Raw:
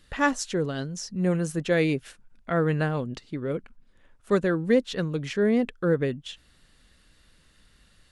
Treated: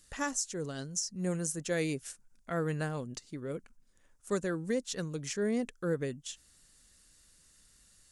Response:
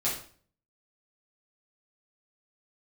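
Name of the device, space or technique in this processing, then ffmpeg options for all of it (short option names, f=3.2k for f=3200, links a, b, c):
over-bright horn tweeter: -af "highshelf=f=4.9k:t=q:w=1.5:g=11,equalizer=f=5.3k:w=0.42:g=4,alimiter=limit=-12dB:level=0:latency=1:release=252,volume=-9dB"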